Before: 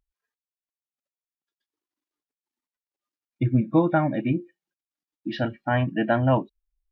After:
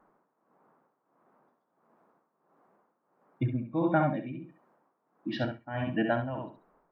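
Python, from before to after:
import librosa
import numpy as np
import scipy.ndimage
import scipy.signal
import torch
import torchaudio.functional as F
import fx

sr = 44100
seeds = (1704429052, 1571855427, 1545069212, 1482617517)

y = fx.echo_feedback(x, sr, ms=67, feedback_pct=19, wet_db=-5.0)
y = fx.dmg_noise_band(y, sr, seeds[0], low_hz=160.0, high_hz=1200.0, level_db=-62.0)
y = y * (1.0 - 0.78 / 2.0 + 0.78 / 2.0 * np.cos(2.0 * np.pi * 1.5 * (np.arange(len(y)) / sr)))
y = y * librosa.db_to_amplitude(-4.0)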